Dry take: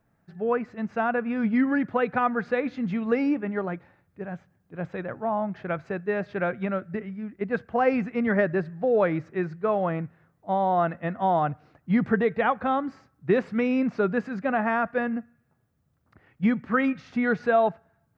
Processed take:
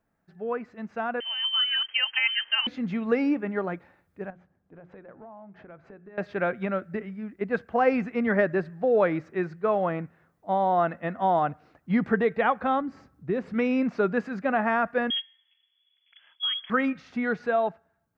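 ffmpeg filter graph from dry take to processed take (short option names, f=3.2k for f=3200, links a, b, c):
-filter_complex "[0:a]asettb=1/sr,asplit=3[a][b][c];[a]atrim=end=1.204[d];[b]atrim=start=1.2:end=2.67,asetpts=PTS-STARTPTS,afade=t=in:d=0.004:c=qsin,afade=t=out:st=1.466:d=0.004:c=qsin,aeval=exprs='sgn(val(0))*max(abs(val(0))-0.00168,0)':c=same,lowpass=f=2.8k:t=q:w=0.5098,lowpass=f=2.8k:t=q:w=0.6013,lowpass=f=2.8k:t=q:w=0.9,lowpass=f=2.8k:t=q:w=2.563,afreqshift=-3300[e];[c]atrim=start=2.666[f];[d][e]acrossfade=d=0.004:c1=hsin:c2=qsin[g];[g][f]acrossfade=d=0.004:c1=qsin:c2=hsin,asettb=1/sr,asplit=3[h][i][j];[h]atrim=end=4.304[k];[i]atrim=start=4.3:end=6.18,asetpts=PTS-STARTPTS,afade=t=in:d=0.004:c=qsin,afade=t=out:st=1.876:d=0.004:c=qsin,lowpass=f=1.2k:p=1,acompressor=threshold=-42dB:ratio=16:attack=3.2:release=140:knee=1:detection=peak,bandreject=f=60:t=h:w=6,bandreject=f=120:t=h:w=6,bandreject=f=180:t=h:w=6,bandreject=f=240:t=h:w=6,bandreject=f=300:t=h:w=6,bandreject=f=360:t=h:w=6,bandreject=f=420:t=h:w=6[l];[j]atrim=start=6.176[m];[k][l]acrossfade=d=0.004:c1=hsin:c2=qsin[n];[n][m]acrossfade=d=0.004:c1=qsin:c2=hsin,asettb=1/sr,asplit=3[o][p][q];[o]atrim=end=12.814[r];[p]atrim=start=12.81:end=13.54,asetpts=PTS-STARTPTS,afade=t=in:d=0.004:c=qsin,afade=t=out:st=0.726:d=0.004:c=qsin,lowshelf=f=390:g=11,acompressor=threshold=-42dB:ratio=1.5:attack=3.2:release=140:knee=1:detection=peak[s];[q]atrim=start=13.536[t];[r][s]acrossfade=d=0.004:c1=hsin:c2=qsin[u];[u][t]acrossfade=d=0.004:c1=qsin:c2=hsin,asettb=1/sr,asplit=3[v][w][x];[v]atrim=end=15.104[y];[w]atrim=start=15.1:end=16.7,asetpts=PTS-STARTPTS,afade=t=in:d=0.004:c=qsin,afade=t=out:st=1.596:d=0.004:c=qsin,lowpass=f=3k:t=q:w=0.5098,lowpass=f=3k:t=q:w=0.6013,lowpass=f=3k:t=q:w=0.9,lowpass=f=3k:t=q:w=2.563,afreqshift=-3500,acompressor=threshold=-25dB:ratio=4:attack=3.2:release=140:knee=1:detection=peak[z];[x]atrim=start=16.696[aa];[y][z]acrossfade=d=0.004:c1=hsin:c2=qsin[ab];[ab][aa]acrossfade=d=0.004:c1=qsin:c2=hsin,equalizer=f=120:w=1.6:g=-8.5,dynaudnorm=f=580:g=7:m=6dB,volume=-5dB"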